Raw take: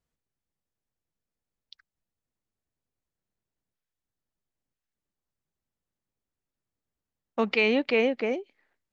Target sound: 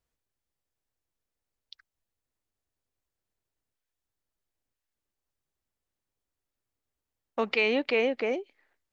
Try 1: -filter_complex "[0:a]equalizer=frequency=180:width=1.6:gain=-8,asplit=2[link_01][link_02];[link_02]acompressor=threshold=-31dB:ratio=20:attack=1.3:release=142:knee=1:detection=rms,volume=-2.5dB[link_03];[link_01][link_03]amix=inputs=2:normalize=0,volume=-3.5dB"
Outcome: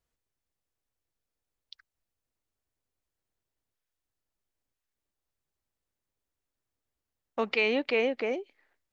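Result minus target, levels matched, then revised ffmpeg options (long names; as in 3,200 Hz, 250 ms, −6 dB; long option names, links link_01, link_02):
downward compressor: peak gain reduction +6 dB
-filter_complex "[0:a]equalizer=frequency=180:width=1.6:gain=-8,asplit=2[link_01][link_02];[link_02]acompressor=threshold=-24.5dB:ratio=20:attack=1.3:release=142:knee=1:detection=rms,volume=-2.5dB[link_03];[link_01][link_03]amix=inputs=2:normalize=0,volume=-3.5dB"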